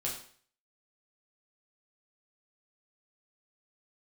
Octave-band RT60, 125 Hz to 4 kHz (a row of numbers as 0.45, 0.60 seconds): 0.50, 0.50, 0.50, 0.50, 0.50, 0.50 seconds